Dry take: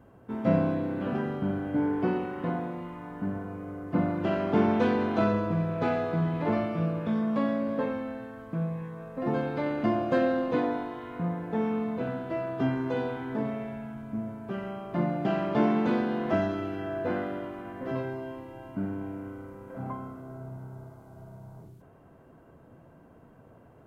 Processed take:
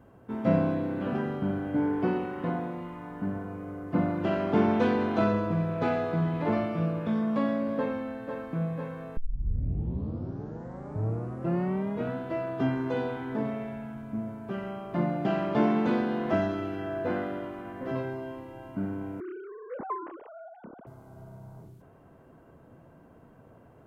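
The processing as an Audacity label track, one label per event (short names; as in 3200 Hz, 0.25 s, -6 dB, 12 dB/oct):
7.770000	8.520000	echo throw 0.5 s, feedback 75%, level -7 dB
9.170000	9.170000	tape start 2.98 s
19.200000	20.870000	sine-wave speech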